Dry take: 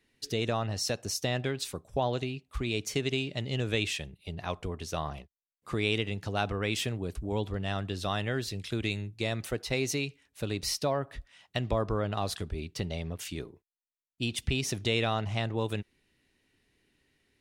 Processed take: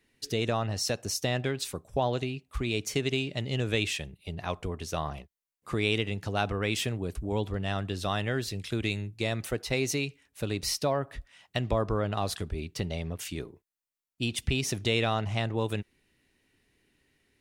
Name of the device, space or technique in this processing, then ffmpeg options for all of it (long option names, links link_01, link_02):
exciter from parts: -filter_complex "[0:a]asplit=2[link_01][link_02];[link_02]highpass=frequency=4500:poles=1,asoftclip=type=tanh:threshold=-38.5dB,highpass=frequency=2800:width=0.5412,highpass=frequency=2800:width=1.3066,volume=-11dB[link_03];[link_01][link_03]amix=inputs=2:normalize=0,volume=1.5dB"